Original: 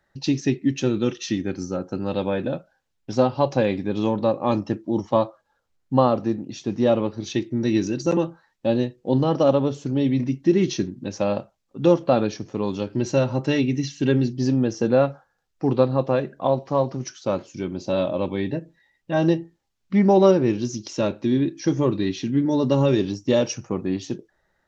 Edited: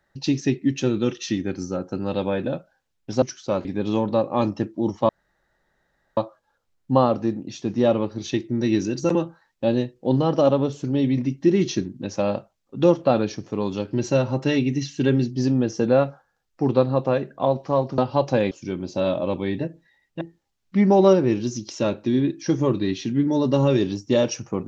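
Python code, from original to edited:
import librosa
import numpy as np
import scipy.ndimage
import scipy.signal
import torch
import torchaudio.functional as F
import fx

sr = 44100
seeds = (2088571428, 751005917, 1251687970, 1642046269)

y = fx.edit(x, sr, fx.swap(start_s=3.22, length_s=0.53, other_s=17.0, other_length_s=0.43),
    fx.insert_room_tone(at_s=5.19, length_s=1.08),
    fx.cut(start_s=19.13, length_s=0.26), tone=tone)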